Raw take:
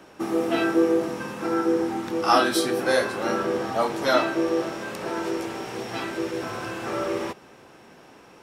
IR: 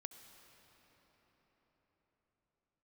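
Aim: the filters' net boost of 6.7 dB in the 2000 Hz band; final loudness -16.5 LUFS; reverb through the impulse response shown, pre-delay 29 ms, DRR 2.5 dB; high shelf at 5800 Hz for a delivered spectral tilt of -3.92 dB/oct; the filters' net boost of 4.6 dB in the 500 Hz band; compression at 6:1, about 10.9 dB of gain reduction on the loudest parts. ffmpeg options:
-filter_complex "[0:a]equalizer=f=500:t=o:g=5,equalizer=f=2k:t=o:g=8.5,highshelf=f=5.8k:g=3.5,acompressor=threshold=-23dB:ratio=6,asplit=2[a][b];[1:a]atrim=start_sample=2205,adelay=29[c];[b][c]afir=irnorm=-1:irlink=0,volume=2.5dB[d];[a][d]amix=inputs=2:normalize=0,volume=9.5dB"

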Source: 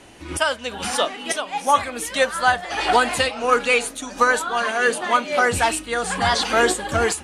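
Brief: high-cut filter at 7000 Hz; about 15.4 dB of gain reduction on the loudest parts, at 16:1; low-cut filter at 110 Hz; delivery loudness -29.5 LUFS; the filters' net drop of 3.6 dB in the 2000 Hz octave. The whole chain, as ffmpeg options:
-af "highpass=110,lowpass=7k,equalizer=f=2k:t=o:g=-5,acompressor=threshold=-28dB:ratio=16,volume=3dB"

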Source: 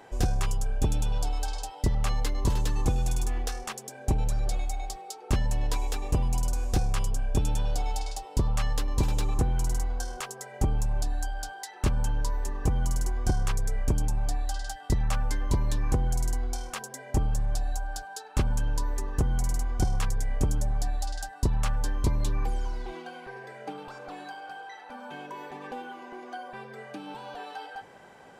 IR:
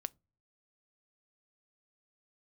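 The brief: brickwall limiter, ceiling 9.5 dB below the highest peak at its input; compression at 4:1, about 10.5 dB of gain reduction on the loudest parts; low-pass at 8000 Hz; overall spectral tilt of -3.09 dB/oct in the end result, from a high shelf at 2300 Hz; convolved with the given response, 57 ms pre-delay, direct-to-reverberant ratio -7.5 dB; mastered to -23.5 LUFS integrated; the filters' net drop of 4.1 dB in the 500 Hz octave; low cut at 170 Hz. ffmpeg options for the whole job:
-filter_complex "[0:a]highpass=170,lowpass=8k,equalizer=f=500:t=o:g=-5.5,highshelf=f=2.3k:g=6.5,acompressor=threshold=-39dB:ratio=4,alimiter=level_in=7.5dB:limit=-24dB:level=0:latency=1,volume=-7.5dB,asplit=2[a][b];[1:a]atrim=start_sample=2205,adelay=57[c];[b][c]afir=irnorm=-1:irlink=0,volume=9.5dB[d];[a][d]amix=inputs=2:normalize=0,volume=13dB"

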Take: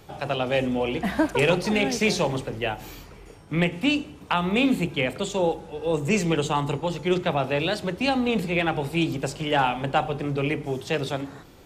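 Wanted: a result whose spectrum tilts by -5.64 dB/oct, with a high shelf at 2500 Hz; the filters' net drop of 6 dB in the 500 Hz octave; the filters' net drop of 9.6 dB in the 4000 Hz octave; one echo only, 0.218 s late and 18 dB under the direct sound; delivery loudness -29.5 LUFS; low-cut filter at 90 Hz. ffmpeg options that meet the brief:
-af "highpass=90,equalizer=f=500:t=o:g=-7,highshelf=f=2.5k:g=-6.5,equalizer=f=4k:t=o:g=-8,aecho=1:1:218:0.126,volume=-1dB"

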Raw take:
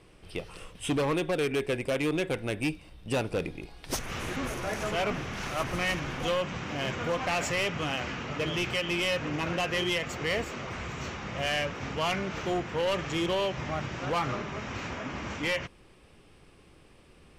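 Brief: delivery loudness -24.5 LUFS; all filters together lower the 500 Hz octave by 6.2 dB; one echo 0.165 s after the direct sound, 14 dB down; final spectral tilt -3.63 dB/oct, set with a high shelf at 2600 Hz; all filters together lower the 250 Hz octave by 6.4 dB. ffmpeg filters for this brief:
-af "equalizer=f=250:t=o:g=-7.5,equalizer=f=500:t=o:g=-6,highshelf=f=2.6k:g=8.5,aecho=1:1:165:0.2,volume=5dB"

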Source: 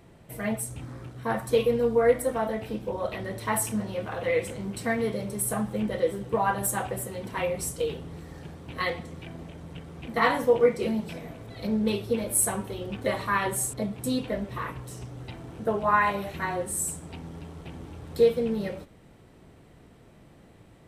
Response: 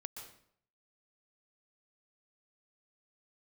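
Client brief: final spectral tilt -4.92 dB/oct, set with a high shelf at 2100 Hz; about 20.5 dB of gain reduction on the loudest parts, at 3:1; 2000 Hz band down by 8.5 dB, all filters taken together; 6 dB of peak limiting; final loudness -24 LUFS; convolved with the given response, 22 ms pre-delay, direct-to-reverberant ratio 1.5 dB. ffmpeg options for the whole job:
-filter_complex "[0:a]equalizer=f=2k:t=o:g=-8.5,highshelf=f=2.1k:g=-4,acompressor=threshold=-45dB:ratio=3,alimiter=level_in=11.5dB:limit=-24dB:level=0:latency=1,volume=-11.5dB,asplit=2[a][b];[1:a]atrim=start_sample=2205,adelay=22[c];[b][c]afir=irnorm=-1:irlink=0,volume=1.5dB[d];[a][d]amix=inputs=2:normalize=0,volume=20dB"

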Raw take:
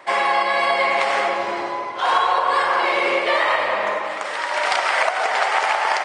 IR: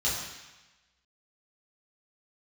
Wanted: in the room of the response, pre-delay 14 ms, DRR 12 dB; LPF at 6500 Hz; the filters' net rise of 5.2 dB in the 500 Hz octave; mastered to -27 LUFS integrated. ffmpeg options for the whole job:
-filter_complex "[0:a]lowpass=6.5k,equalizer=f=500:t=o:g=6.5,asplit=2[a][b];[1:a]atrim=start_sample=2205,adelay=14[c];[b][c]afir=irnorm=-1:irlink=0,volume=-21dB[d];[a][d]amix=inputs=2:normalize=0,volume=-9.5dB"

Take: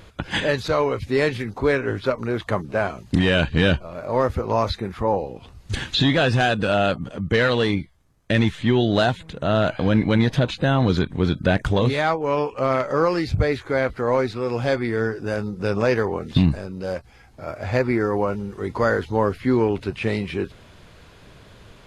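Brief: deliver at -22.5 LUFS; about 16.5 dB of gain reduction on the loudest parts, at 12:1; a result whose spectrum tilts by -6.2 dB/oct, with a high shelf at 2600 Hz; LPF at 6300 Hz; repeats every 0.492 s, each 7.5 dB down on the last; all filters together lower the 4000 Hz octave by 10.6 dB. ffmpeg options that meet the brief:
-af "lowpass=6.3k,highshelf=f=2.6k:g=-6.5,equalizer=f=4k:t=o:g=-8,acompressor=threshold=-30dB:ratio=12,aecho=1:1:492|984|1476|1968|2460:0.422|0.177|0.0744|0.0312|0.0131,volume=12.5dB"

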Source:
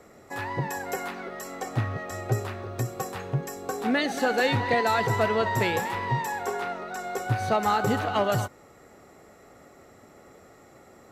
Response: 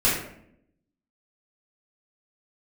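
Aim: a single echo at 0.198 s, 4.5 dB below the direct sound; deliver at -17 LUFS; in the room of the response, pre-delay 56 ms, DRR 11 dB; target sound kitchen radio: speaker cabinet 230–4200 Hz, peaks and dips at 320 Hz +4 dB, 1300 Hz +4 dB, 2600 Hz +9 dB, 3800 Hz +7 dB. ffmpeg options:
-filter_complex "[0:a]aecho=1:1:198:0.596,asplit=2[a][b];[1:a]atrim=start_sample=2205,adelay=56[c];[b][c]afir=irnorm=-1:irlink=0,volume=-26.5dB[d];[a][d]amix=inputs=2:normalize=0,highpass=230,equalizer=f=320:t=q:w=4:g=4,equalizer=f=1.3k:t=q:w=4:g=4,equalizer=f=2.6k:t=q:w=4:g=9,equalizer=f=3.8k:t=q:w=4:g=7,lowpass=f=4.2k:w=0.5412,lowpass=f=4.2k:w=1.3066,volume=8dB"

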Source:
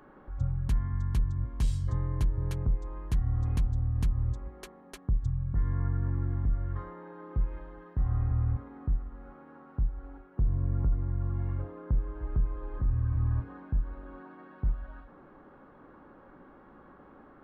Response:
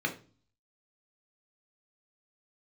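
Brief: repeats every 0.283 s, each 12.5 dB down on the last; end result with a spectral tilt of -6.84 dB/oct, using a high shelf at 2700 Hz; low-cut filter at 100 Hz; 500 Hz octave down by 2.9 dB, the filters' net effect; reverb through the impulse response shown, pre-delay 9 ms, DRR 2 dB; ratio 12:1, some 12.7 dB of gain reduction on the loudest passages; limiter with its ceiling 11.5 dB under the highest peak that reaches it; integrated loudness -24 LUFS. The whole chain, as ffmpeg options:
-filter_complex "[0:a]highpass=100,equalizer=f=500:t=o:g=-4,highshelf=f=2.7k:g=7,acompressor=threshold=-41dB:ratio=12,alimiter=level_in=16dB:limit=-24dB:level=0:latency=1,volume=-16dB,aecho=1:1:283|566|849:0.237|0.0569|0.0137,asplit=2[a][b];[1:a]atrim=start_sample=2205,adelay=9[c];[b][c]afir=irnorm=-1:irlink=0,volume=-9dB[d];[a][d]amix=inputs=2:normalize=0,volume=22.5dB"

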